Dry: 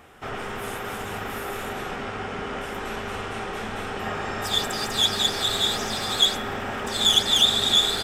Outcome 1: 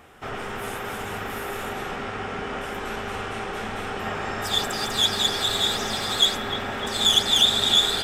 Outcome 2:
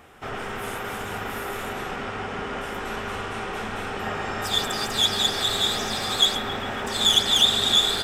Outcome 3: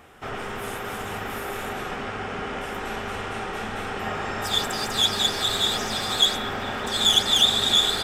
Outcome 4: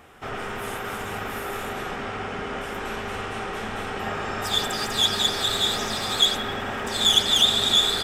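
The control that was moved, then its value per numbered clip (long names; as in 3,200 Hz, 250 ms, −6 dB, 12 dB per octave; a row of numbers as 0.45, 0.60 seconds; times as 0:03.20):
delay with a band-pass on its return, delay time: 303, 136, 712, 88 milliseconds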